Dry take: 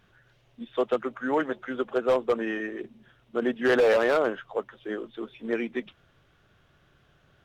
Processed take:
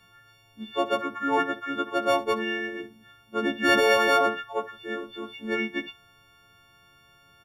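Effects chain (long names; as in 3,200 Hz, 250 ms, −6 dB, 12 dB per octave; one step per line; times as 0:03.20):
every partial snapped to a pitch grid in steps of 4 semitones
ambience of single reflections 10 ms −11 dB, 66 ms −16.5 dB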